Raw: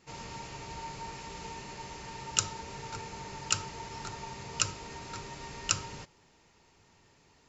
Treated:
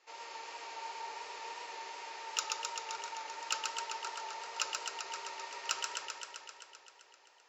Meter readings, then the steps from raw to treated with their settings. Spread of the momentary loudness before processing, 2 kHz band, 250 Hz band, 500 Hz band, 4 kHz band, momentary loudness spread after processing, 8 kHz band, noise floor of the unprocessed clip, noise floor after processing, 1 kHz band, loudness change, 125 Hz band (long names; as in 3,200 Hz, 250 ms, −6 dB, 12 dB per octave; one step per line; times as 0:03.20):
12 LU, 0.0 dB, −17.0 dB, −4.0 dB, −1.5 dB, 11 LU, can't be measured, −64 dBFS, −63 dBFS, +0.5 dB, −3.5 dB, below −35 dB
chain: tape wow and flutter 20 cents
three-way crossover with the lows and the highs turned down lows −22 dB, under 510 Hz, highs −15 dB, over 6,700 Hz
in parallel at −5 dB: soft clipping −26 dBFS, distortion −7 dB
on the sum: low shelf with overshoot 250 Hz −13.5 dB, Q 1.5
feedback echo with a swinging delay time 130 ms, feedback 75%, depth 60 cents, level −3.5 dB
level −6.5 dB